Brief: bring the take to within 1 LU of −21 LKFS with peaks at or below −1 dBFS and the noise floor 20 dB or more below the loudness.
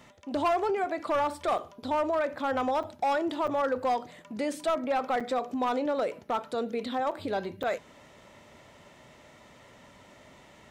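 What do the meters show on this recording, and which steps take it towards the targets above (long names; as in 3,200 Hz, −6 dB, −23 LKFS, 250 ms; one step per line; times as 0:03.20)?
share of clipped samples 1.6%; peaks flattened at −21.5 dBFS; number of dropouts 6; longest dropout 5.9 ms; integrated loudness −30.0 LKFS; sample peak −21.5 dBFS; target loudness −21.0 LKFS
→ clipped peaks rebuilt −21.5 dBFS
repair the gap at 0:01.58/0:02.83/0:03.47/0:05.20/0:07.11/0:07.63, 5.9 ms
level +9 dB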